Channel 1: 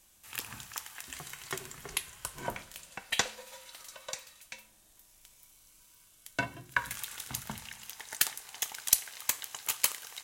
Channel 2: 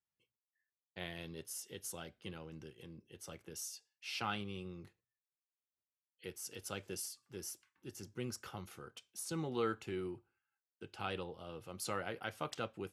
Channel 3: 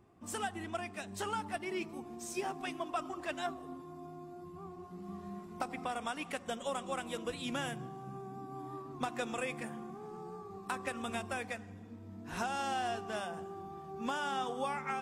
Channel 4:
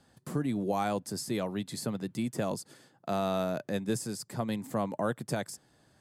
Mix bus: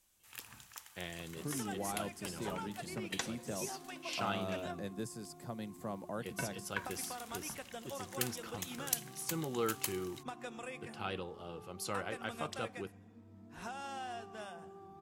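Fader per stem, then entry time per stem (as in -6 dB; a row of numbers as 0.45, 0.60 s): -10.0, +0.5, -8.0, -10.5 dB; 0.00, 0.00, 1.25, 1.10 s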